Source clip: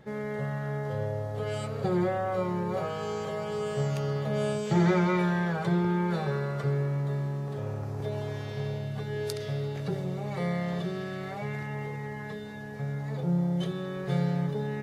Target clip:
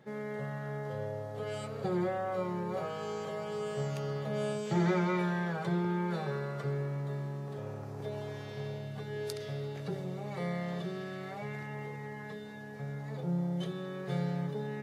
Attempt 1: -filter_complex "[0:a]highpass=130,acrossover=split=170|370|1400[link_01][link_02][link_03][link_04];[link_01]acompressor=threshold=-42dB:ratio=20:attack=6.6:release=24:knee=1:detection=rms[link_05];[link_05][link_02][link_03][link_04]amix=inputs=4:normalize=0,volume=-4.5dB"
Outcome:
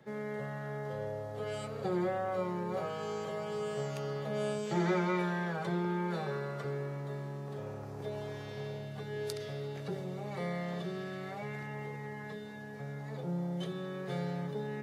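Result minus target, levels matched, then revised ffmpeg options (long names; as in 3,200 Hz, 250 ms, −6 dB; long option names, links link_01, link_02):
downward compressor: peak gain reduction +14 dB
-af "highpass=130,volume=-4.5dB"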